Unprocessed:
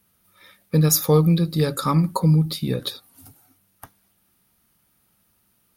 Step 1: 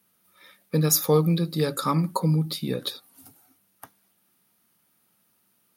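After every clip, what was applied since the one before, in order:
high-pass filter 170 Hz 12 dB per octave
level −2 dB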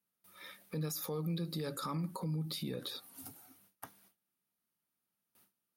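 noise gate with hold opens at −55 dBFS
downward compressor 10 to 1, threshold −31 dBFS, peak gain reduction 16.5 dB
brickwall limiter −31 dBFS, peak gain reduction 11 dB
level +1 dB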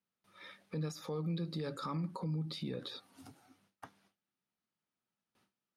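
high-frequency loss of the air 94 metres

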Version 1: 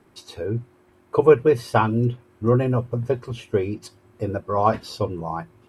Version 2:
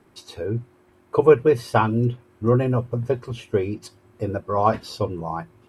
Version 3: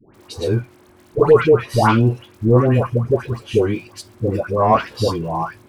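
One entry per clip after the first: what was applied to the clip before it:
no processing that can be heard
surface crackle 110 per second −44 dBFS; soft clipping −11.5 dBFS, distortion −13 dB; all-pass dispersion highs, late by 143 ms, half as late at 1,000 Hz; level +7 dB

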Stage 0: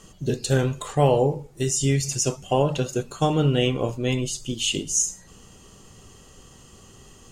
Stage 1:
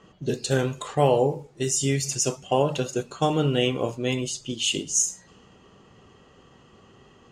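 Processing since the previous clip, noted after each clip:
low-pass that shuts in the quiet parts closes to 2,300 Hz, open at −20 dBFS
high-pass filter 180 Hz 6 dB per octave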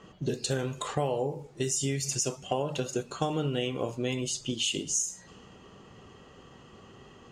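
downward compressor 4 to 1, threshold −29 dBFS, peak gain reduction 12.5 dB
level +1.5 dB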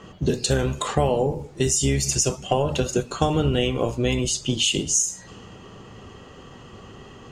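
sub-octave generator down 1 octave, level −4 dB
level +8 dB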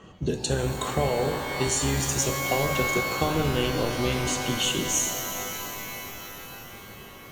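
notch filter 5,000 Hz, Q 10
reverb with rising layers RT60 4 s, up +12 semitones, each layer −2 dB, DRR 6 dB
level −5 dB

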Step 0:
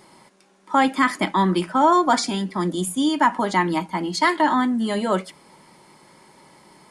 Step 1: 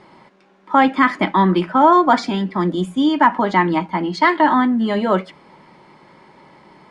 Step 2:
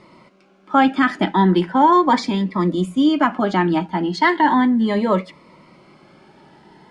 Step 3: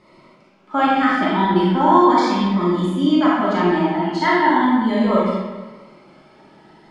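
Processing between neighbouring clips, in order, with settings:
low-pass filter 3,000 Hz 12 dB per octave; level +4.5 dB
phaser whose notches keep moving one way rising 0.37 Hz; level +1 dB
comb and all-pass reverb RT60 1.3 s, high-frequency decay 0.75×, pre-delay 0 ms, DRR −6.5 dB; level −6.5 dB

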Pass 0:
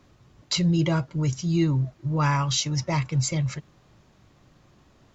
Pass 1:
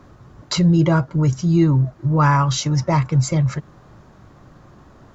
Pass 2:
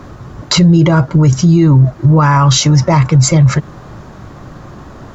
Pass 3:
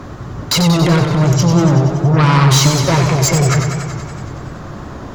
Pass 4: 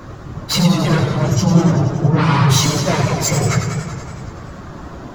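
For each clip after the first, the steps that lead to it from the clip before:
high shelf with overshoot 1,900 Hz −7 dB, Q 1.5; in parallel at −1 dB: downward compressor, threshold −33 dBFS, peak gain reduction 14.5 dB; on the sum: level +5.5 dB
boost into a limiter +15 dB; level −1 dB
harmonic generator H 5 −11 dB, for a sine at −1.5 dBFS; feedback echo with a swinging delay time 94 ms, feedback 73%, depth 98 cents, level −6.5 dB; level −5.5 dB
random phases in long frames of 50 ms; level −3 dB

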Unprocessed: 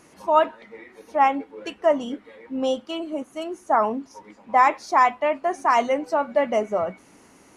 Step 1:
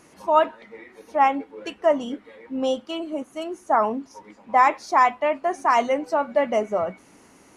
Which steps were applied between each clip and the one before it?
no processing that can be heard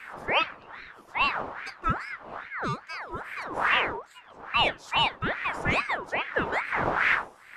wind on the microphone 390 Hz −27 dBFS
ring modulator whose carrier an LFO sweeps 1,300 Hz, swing 50%, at 2.4 Hz
level −4.5 dB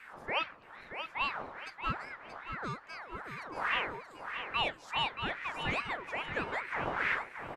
repeating echo 629 ms, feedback 36%, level −8 dB
level −8.5 dB

